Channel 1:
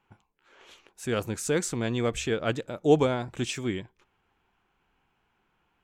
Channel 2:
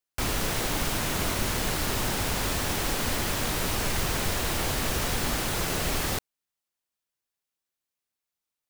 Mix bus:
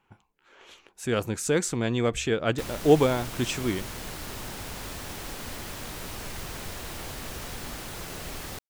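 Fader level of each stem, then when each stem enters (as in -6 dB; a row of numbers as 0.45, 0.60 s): +2.0, -9.5 dB; 0.00, 2.40 s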